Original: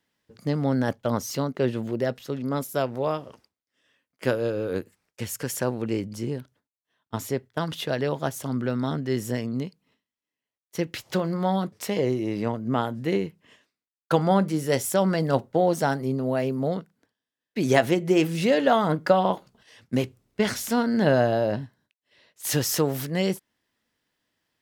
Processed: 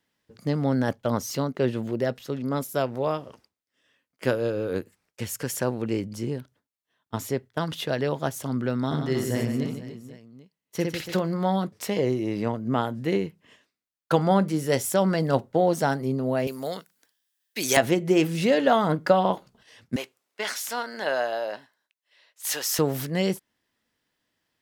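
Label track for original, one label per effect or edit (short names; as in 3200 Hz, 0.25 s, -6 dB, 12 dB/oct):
8.860000	11.190000	reverse bouncing-ball echo first gap 60 ms, each gap 1.5×, echoes 5
16.470000	17.770000	tilt +4.5 dB/oct
19.960000	22.790000	HPF 730 Hz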